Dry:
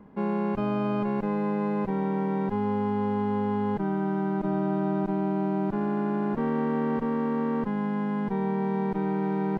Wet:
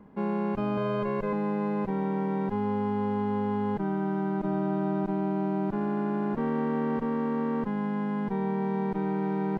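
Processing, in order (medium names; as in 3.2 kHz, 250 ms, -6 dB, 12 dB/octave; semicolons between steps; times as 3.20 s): 0.77–1.33 s: comb 1.9 ms, depth 82%; trim -1.5 dB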